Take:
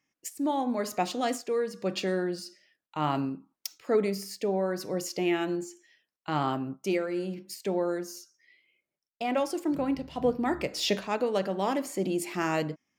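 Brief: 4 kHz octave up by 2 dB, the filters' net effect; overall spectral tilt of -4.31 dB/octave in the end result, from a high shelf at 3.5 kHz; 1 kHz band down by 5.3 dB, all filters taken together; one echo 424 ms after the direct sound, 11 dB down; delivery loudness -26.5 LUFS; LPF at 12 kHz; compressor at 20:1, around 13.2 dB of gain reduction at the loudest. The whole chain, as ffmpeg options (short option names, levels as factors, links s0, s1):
-af "lowpass=12000,equalizer=f=1000:t=o:g=-7.5,highshelf=f=3500:g=-4,equalizer=f=4000:t=o:g=6,acompressor=threshold=0.02:ratio=20,aecho=1:1:424:0.282,volume=4.22"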